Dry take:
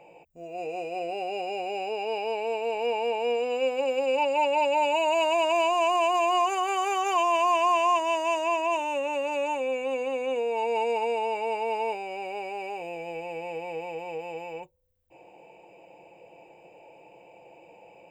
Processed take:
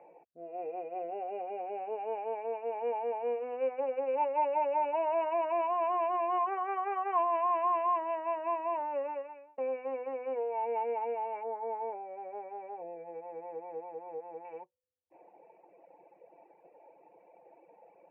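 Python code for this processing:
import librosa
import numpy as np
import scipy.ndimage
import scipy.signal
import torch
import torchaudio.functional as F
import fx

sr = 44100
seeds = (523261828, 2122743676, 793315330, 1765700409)

y = fx.peak_eq(x, sr, hz=3300.0, db=-15.0, octaves=1.1, at=(11.43, 14.45))
y = fx.edit(y, sr, fx.fade_out_span(start_s=9.09, length_s=0.49), tone=tone)
y = scipy.signal.sosfilt(scipy.signal.ellip(4, 1.0, 60, 2000.0, 'lowpass', fs=sr, output='sos'), y)
y = fx.dereverb_blind(y, sr, rt60_s=1.6)
y = scipy.signal.sosfilt(scipy.signal.butter(2, 260.0, 'highpass', fs=sr, output='sos'), y)
y = y * librosa.db_to_amplitude(-3.0)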